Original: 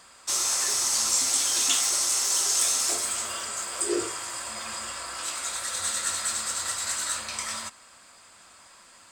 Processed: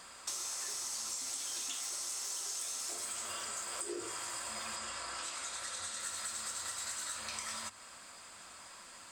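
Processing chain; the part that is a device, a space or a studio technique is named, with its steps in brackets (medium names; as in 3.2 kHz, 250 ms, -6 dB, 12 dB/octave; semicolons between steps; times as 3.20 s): serial compression, leveller first (compression 2:1, threshold -29 dBFS, peak gain reduction 6 dB; compression 4:1, threshold -39 dBFS, peak gain reduction 12.5 dB); hum notches 50/100 Hz; 4.76–6.00 s: low-pass 9.1 kHz 12 dB/octave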